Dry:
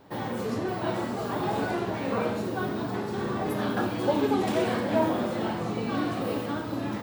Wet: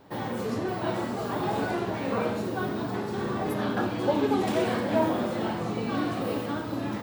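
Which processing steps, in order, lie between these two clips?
0:03.54–0:04.31: high-shelf EQ 8,900 Hz −6.5 dB

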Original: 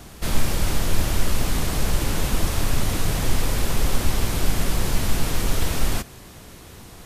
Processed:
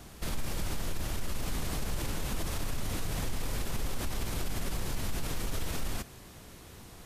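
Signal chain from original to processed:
brickwall limiter −17 dBFS, peak gain reduction 11 dB
level −7 dB

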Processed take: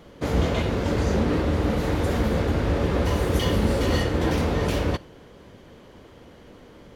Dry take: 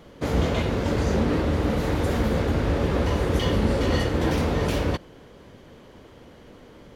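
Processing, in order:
0:03.05–0:04.00: high-shelf EQ 9,200 Hz +10.5 dB
convolution reverb, pre-delay 3 ms, DRR 18.5 dB

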